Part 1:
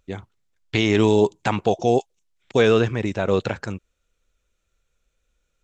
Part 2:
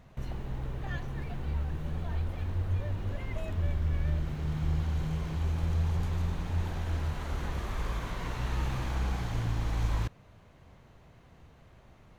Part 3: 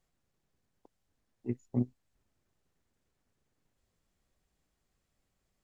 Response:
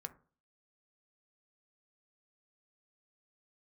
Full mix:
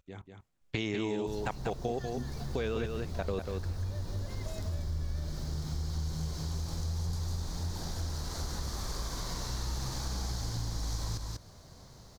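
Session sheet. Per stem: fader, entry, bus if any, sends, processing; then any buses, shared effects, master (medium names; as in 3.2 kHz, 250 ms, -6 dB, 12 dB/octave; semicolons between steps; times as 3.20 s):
-1.0 dB, 0.00 s, send -17 dB, echo send -5.5 dB, level held to a coarse grid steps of 22 dB
+2.0 dB, 1.10 s, no send, echo send -7 dB, resonant high shelf 3.6 kHz +10.5 dB, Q 3
-4.0 dB, 0.40 s, send -5.5 dB, no echo send, none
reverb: on, RT60 0.40 s, pre-delay 3 ms
echo: delay 192 ms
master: compression 2.5:1, threshold -35 dBFS, peak gain reduction 12 dB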